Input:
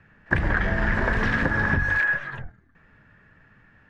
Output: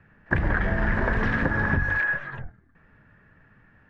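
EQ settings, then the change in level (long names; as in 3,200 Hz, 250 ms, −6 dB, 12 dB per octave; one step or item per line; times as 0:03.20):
high-shelf EQ 3,100 Hz −10.5 dB
0.0 dB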